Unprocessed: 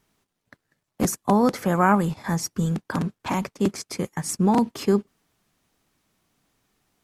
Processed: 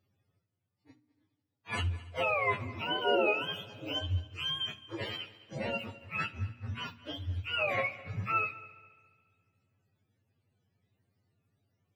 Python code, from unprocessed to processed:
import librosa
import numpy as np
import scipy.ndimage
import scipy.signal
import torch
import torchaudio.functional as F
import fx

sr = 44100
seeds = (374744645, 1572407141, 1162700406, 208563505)

p1 = fx.octave_mirror(x, sr, pivot_hz=720.0)
p2 = fx.hum_notches(p1, sr, base_hz=60, count=5)
p3 = fx.stretch_vocoder(p2, sr, factor=1.7)
p4 = p3 + fx.echo_heads(p3, sr, ms=70, heads='first and third', feedback_pct=54, wet_db=-20.0, dry=0)
y = p4 * librosa.db_to_amplitude(-7.5)